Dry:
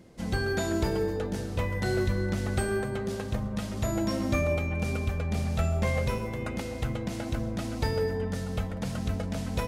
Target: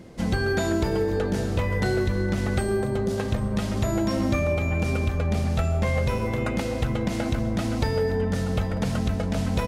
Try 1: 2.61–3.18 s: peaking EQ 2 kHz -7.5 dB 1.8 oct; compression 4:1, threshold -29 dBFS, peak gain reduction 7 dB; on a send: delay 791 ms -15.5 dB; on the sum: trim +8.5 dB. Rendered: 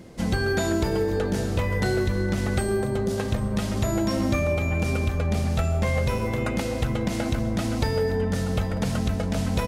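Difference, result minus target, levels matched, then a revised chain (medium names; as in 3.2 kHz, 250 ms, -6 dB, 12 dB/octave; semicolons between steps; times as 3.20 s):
8 kHz band +2.5 dB
2.61–3.18 s: peaking EQ 2 kHz -7.5 dB 1.8 oct; compression 4:1, threshold -29 dBFS, peak gain reduction 7 dB; treble shelf 5.7 kHz -4.5 dB; on a send: delay 791 ms -15.5 dB; on the sum: trim +8.5 dB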